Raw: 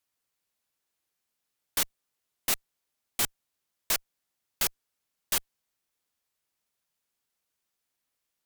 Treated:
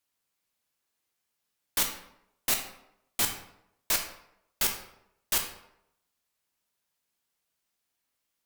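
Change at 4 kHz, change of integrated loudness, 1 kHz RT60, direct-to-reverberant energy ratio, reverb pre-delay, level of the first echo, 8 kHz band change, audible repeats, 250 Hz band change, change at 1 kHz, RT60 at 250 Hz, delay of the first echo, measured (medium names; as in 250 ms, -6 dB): +1.5 dB, +1.0 dB, 0.80 s, 3.5 dB, 14 ms, no echo, +1.0 dB, no echo, +2.0 dB, +2.0 dB, 0.85 s, no echo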